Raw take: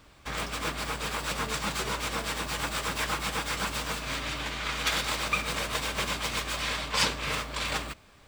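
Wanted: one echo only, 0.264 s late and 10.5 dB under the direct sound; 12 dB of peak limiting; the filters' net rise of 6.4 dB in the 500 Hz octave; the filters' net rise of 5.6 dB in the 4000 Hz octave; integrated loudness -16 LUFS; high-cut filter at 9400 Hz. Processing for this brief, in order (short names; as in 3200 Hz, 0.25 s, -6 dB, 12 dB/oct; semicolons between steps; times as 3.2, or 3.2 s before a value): LPF 9400 Hz; bell 500 Hz +7.5 dB; bell 4000 Hz +7 dB; limiter -19.5 dBFS; echo 0.264 s -10.5 dB; gain +12.5 dB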